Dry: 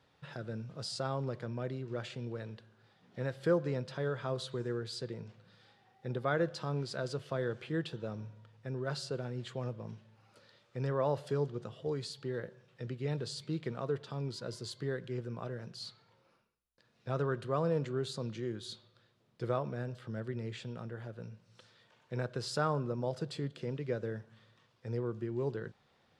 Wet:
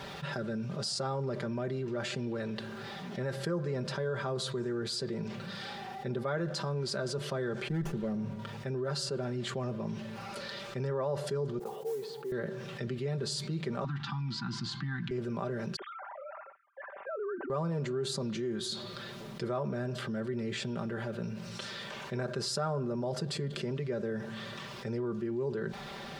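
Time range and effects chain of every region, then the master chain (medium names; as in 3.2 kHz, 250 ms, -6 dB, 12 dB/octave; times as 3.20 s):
7.68–8.39 s: peaking EQ 180 Hz +6.5 dB 2.1 oct + expander -46 dBFS + sliding maximum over 9 samples
11.59–12.32 s: two resonant band-passes 610 Hz, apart 0.78 oct + modulation noise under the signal 22 dB
13.84–15.11 s: Chebyshev band-stop 320–780 Hz, order 4 + distance through air 160 m + three bands compressed up and down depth 40%
15.76–17.50 s: formants replaced by sine waves + low-pass 1.7 kHz 24 dB/octave + compression 2.5:1, threshold -51 dBFS
whole clip: comb 5.1 ms, depth 73%; dynamic bell 3 kHz, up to -5 dB, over -54 dBFS, Q 1.2; level flattener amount 70%; trim -6 dB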